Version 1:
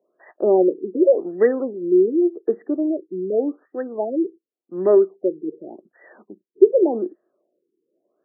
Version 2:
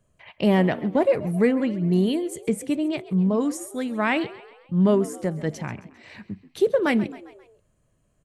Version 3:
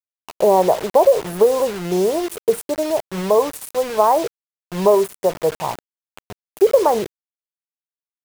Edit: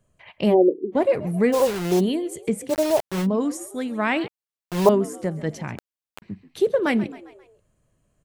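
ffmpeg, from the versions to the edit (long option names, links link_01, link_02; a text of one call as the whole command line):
ffmpeg -i take0.wav -i take1.wav -i take2.wav -filter_complex "[2:a]asplit=4[link_01][link_02][link_03][link_04];[1:a]asplit=6[link_05][link_06][link_07][link_08][link_09][link_10];[link_05]atrim=end=0.55[link_11];[0:a]atrim=start=0.49:end=0.97[link_12];[link_06]atrim=start=0.91:end=1.54[link_13];[link_01]atrim=start=1.52:end=2.01[link_14];[link_07]atrim=start=1.99:end=2.73[link_15];[link_02]atrim=start=2.67:end=3.27[link_16];[link_08]atrim=start=3.21:end=4.282[link_17];[link_03]atrim=start=4.278:end=4.892[link_18];[link_09]atrim=start=4.888:end=5.782[link_19];[link_04]atrim=start=5.778:end=6.222[link_20];[link_10]atrim=start=6.218[link_21];[link_11][link_12]acrossfade=duration=0.06:curve1=tri:curve2=tri[link_22];[link_22][link_13]acrossfade=duration=0.06:curve1=tri:curve2=tri[link_23];[link_23][link_14]acrossfade=duration=0.02:curve1=tri:curve2=tri[link_24];[link_24][link_15]acrossfade=duration=0.02:curve1=tri:curve2=tri[link_25];[link_25][link_16]acrossfade=duration=0.06:curve1=tri:curve2=tri[link_26];[link_26][link_17]acrossfade=duration=0.06:curve1=tri:curve2=tri[link_27];[link_27][link_18]acrossfade=duration=0.004:curve1=hsin:curve2=hsin[link_28];[link_28][link_19]acrossfade=duration=0.004:curve1=hsin:curve2=hsin[link_29];[link_29][link_20]acrossfade=duration=0.004:curve1=hsin:curve2=hsin[link_30];[link_30][link_21]acrossfade=duration=0.004:curve1=hsin:curve2=hsin" out.wav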